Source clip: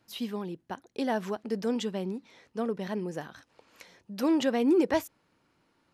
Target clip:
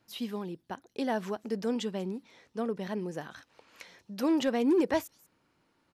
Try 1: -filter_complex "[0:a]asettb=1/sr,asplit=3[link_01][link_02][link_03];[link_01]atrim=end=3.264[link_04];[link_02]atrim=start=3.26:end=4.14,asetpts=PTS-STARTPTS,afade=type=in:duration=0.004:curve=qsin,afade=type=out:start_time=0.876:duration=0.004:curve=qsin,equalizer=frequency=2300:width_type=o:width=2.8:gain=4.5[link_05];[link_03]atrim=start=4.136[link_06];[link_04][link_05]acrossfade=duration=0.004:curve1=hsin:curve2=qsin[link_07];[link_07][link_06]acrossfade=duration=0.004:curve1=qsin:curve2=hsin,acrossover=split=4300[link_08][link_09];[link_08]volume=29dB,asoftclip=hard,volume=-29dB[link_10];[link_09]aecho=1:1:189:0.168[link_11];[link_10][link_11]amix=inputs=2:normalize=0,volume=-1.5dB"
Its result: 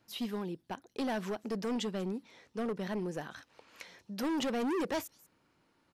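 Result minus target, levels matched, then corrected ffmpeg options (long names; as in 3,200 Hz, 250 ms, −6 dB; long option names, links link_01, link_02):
gain into a clipping stage and back: distortion +21 dB
-filter_complex "[0:a]asettb=1/sr,asplit=3[link_01][link_02][link_03];[link_01]atrim=end=3.264[link_04];[link_02]atrim=start=3.26:end=4.14,asetpts=PTS-STARTPTS,afade=type=in:duration=0.004:curve=qsin,afade=type=out:start_time=0.876:duration=0.004:curve=qsin,equalizer=frequency=2300:width_type=o:width=2.8:gain=4.5[link_05];[link_03]atrim=start=4.136[link_06];[link_04][link_05]acrossfade=duration=0.004:curve1=hsin:curve2=qsin[link_07];[link_07][link_06]acrossfade=duration=0.004:curve1=qsin:curve2=hsin,acrossover=split=4300[link_08][link_09];[link_08]volume=18.5dB,asoftclip=hard,volume=-18.5dB[link_10];[link_09]aecho=1:1:189:0.168[link_11];[link_10][link_11]amix=inputs=2:normalize=0,volume=-1.5dB"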